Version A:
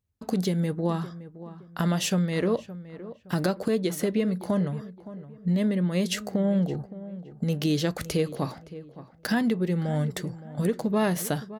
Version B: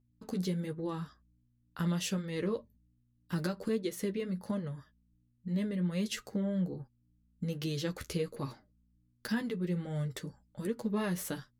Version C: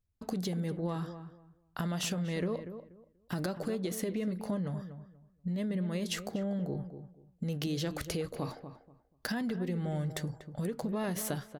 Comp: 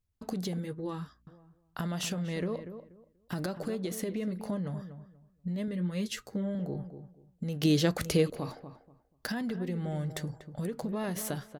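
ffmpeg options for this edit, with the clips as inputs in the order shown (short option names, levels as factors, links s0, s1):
-filter_complex "[1:a]asplit=2[s0][s1];[2:a]asplit=4[s2][s3][s4][s5];[s2]atrim=end=0.592[s6];[s0]atrim=start=0.588:end=1.272[s7];[s3]atrim=start=1.268:end=5.682[s8];[s1]atrim=start=5.678:end=6.552[s9];[s4]atrim=start=6.548:end=7.632[s10];[0:a]atrim=start=7.628:end=8.302[s11];[s5]atrim=start=8.298[s12];[s6][s7]acrossfade=d=0.004:c1=hsin:c2=hsin[s13];[s13][s8]acrossfade=d=0.004:c1=hsin:c2=hsin[s14];[s14][s9]acrossfade=d=0.004:c1=hsin:c2=hsin[s15];[s15][s10]acrossfade=d=0.004:c1=hsin:c2=hsin[s16];[s16][s11]acrossfade=d=0.004:c1=hsin:c2=hsin[s17];[s17][s12]acrossfade=d=0.004:c1=hsin:c2=hsin"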